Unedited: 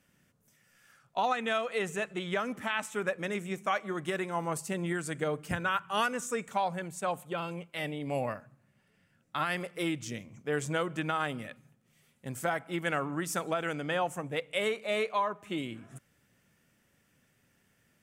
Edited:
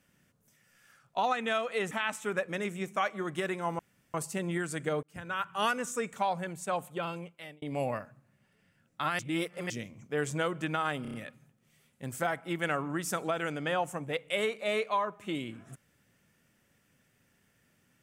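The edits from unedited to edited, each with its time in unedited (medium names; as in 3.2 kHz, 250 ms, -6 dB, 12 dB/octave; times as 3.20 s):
1.91–2.61 s: delete
4.49 s: insert room tone 0.35 s
5.38–5.90 s: fade in
7.44–7.97 s: fade out
9.54–10.05 s: reverse
11.37 s: stutter 0.03 s, 5 plays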